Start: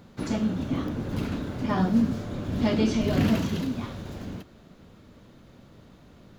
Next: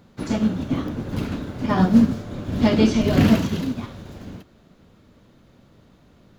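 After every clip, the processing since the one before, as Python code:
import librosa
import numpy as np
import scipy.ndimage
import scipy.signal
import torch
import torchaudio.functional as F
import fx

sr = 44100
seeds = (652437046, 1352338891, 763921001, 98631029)

y = fx.upward_expand(x, sr, threshold_db=-38.0, expansion=1.5)
y = y * librosa.db_to_amplitude(8.5)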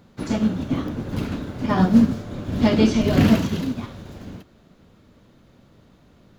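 y = x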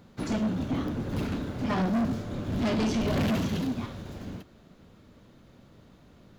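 y = 10.0 ** (-22.0 / 20.0) * np.tanh(x / 10.0 ** (-22.0 / 20.0))
y = y * librosa.db_to_amplitude(-1.5)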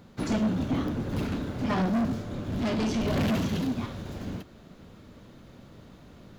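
y = fx.rider(x, sr, range_db=5, speed_s=2.0)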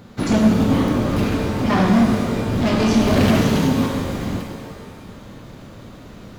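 y = fx.rev_shimmer(x, sr, seeds[0], rt60_s=1.7, semitones=12, shimmer_db=-8, drr_db=1.5)
y = y * librosa.db_to_amplitude(8.5)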